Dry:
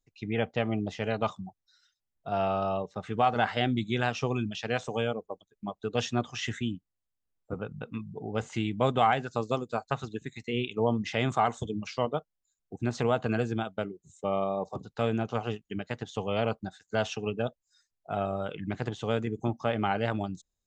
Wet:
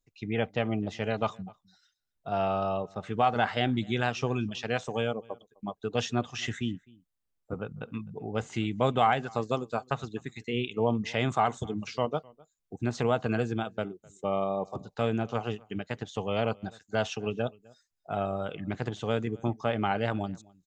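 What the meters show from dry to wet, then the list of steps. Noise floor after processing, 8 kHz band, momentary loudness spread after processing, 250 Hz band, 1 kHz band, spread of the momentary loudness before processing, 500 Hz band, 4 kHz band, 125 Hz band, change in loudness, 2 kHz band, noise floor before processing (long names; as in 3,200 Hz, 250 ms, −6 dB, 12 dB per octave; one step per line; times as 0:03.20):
−81 dBFS, 0.0 dB, 11 LU, 0.0 dB, 0.0 dB, 11 LU, 0.0 dB, 0.0 dB, 0.0 dB, 0.0 dB, 0.0 dB, −84 dBFS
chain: slap from a distant wall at 44 metres, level −25 dB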